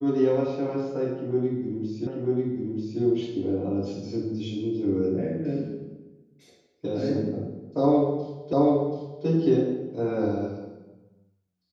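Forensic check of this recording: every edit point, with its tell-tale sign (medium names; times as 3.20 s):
2.07 s: repeat of the last 0.94 s
8.53 s: repeat of the last 0.73 s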